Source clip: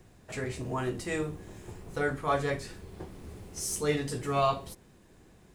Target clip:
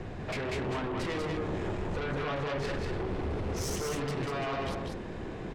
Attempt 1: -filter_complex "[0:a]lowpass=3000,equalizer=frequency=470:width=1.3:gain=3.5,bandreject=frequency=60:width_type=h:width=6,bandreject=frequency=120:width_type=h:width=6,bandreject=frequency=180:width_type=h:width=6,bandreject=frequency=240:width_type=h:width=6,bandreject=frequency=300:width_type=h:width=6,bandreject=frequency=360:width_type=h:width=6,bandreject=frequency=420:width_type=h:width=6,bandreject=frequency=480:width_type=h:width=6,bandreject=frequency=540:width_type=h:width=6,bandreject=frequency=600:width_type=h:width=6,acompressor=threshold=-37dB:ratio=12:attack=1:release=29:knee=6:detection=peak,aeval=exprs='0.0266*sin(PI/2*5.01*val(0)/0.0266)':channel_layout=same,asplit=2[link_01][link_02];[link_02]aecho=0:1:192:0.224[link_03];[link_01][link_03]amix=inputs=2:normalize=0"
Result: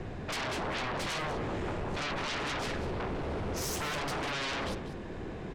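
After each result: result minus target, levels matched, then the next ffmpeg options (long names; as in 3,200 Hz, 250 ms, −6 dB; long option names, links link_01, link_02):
downward compressor: peak gain reduction −6.5 dB; echo-to-direct −9.5 dB
-filter_complex "[0:a]lowpass=3000,equalizer=frequency=470:width=1.3:gain=3.5,bandreject=frequency=60:width_type=h:width=6,bandreject=frequency=120:width_type=h:width=6,bandreject=frequency=180:width_type=h:width=6,bandreject=frequency=240:width_type=h:width=6,bandreject=frequency=300:width_type=h:width=6,bandreject=frequency=360:width_type=h:width=6,bandreject=frequency=420:width_type=h:width=6,bandreject=frequency=480:width_type=h:width=6,bandreject=frequency=540:width_type=h:width=6,bandreject=frequency=600:width_type=h:width=6,acompressor=threshold=-44dB:ratio=12:attack=1:release=29:knee=6:detection=peak,aeval=exprs='0.0266*sin(PI/2*5.01*val(0)/0.0266)':channel_layout=same,asplit=2[link_01][link_02];[link_02]aecho=0:1:192:0.224[link_03];[link_01][link_03]amix=inputs=2:normalize=0"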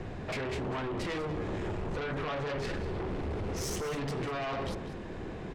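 echo-to-direct −9.5 dB
-filter_complex "[0:a]lowpass=3000,equalizer=frequency=470:width=1.3:gain=3.5,bandreject=frequency=60:width_type=h:width=6,bandreject=frequency=120:width_type=h:width=6,bandreject=frequency=180:width_type=h:width=6,bandreject=frequency=240:width_type=h:width=6,bandreject=frequency=300:width_type=h:width=6,bandreject=frequency=360:width_type=h:width=6,bandreject=frequency=420:width_type=h:width=6,bandreject=frequency=480:width_type=h:width=6,bandreject=frequency=540:width_type=h:width=6,bandreject=frequency=600:width_type=h:width=6,acompressor=threshold=-44dB:ratio=12:attack=1:release=29:knee=6:detection=peak,aeval=exprs='0.0266*sin(PI/2*5.01*val(0)/0.0266)':channel_layout=same,asplit=2[link_01][link_02];[link_02]aecho=0:1:192:0.668[link_03];[link_01][link_03]amix=inputs=2:normalize=0"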